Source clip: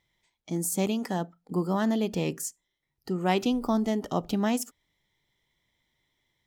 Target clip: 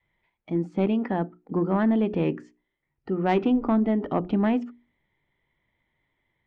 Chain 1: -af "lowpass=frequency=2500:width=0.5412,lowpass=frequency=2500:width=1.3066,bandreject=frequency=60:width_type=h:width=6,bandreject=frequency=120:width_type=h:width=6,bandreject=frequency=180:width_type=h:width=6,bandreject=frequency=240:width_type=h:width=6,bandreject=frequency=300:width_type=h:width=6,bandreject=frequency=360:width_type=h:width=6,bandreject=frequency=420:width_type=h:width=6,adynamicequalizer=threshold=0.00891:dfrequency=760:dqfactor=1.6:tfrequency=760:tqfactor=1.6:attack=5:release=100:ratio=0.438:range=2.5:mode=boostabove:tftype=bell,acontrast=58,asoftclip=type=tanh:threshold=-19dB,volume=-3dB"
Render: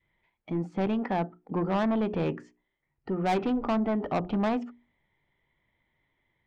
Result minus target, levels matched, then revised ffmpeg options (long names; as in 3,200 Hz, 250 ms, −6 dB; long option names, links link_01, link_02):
soft clipping: distortion +13 dB; 1,000 Hz band +3.5 dB
-af "lowpass=frequency=2500:width=0.5412,lowpass=frequency=2500:width=1.3066,bandreject=frequency=60:width_type=h:width=6,bandreject=frequency=120:width_type=h:width=6,bandreject=frequency=180:width_type=h:width=6,bandreject=frequency=240:width_type=h:width=6,bandreject=frequency=300:width_type=h:width=6,bandreject=frequency=360:width_type=h:width=6,bandreject=frequency=420:width_type=h:width=6,adynamicequalizer=threshold=0.00891:dfrequency=300:dqfactor=1.6:tfrequency=300:tqfactor=1.6:attack=5:release=100:ratio=0.438:range=2.5:mode=boostabove:tftype=bell,acontrast=58,asoftclip=type=tanh:threshold=-9dB,volume=-3dB"